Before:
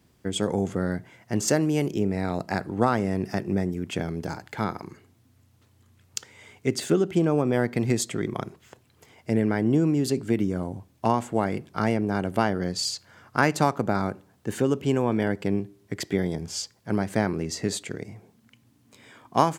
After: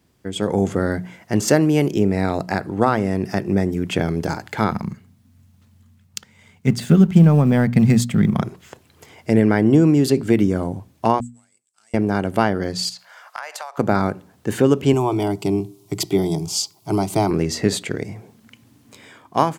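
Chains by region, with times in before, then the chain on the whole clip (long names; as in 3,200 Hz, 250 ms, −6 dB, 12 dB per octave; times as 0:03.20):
0:04.71–0:08.42: mu-law and A-law mismatch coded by A + de-essing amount 30% + low shelf with overshoot 260 Hz +7.5 dB, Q 3
0:11.20–0:11.94: gain on one half-wave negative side −7 dB + resonant band-pass 7,900 Hz, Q 11
0:12.89–0:13.78: Butterworth high-pass 590 Hz + downward compressor 20 to 1, threshold −35 dBFS
0:14.93–0:17.31: high-pass filter 52 Hz + high-shelf EQ 4,600 Hz +6 dB + phaser with its sweep stopped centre 340 Hz, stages 8
whole clip: mains-hum notches 60/120/180/240 Hz; dynamic equaliser 7,000 Hz, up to −5 dB, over −45 dBFS, Q 1.2; automatic gain control gain up to 10 dB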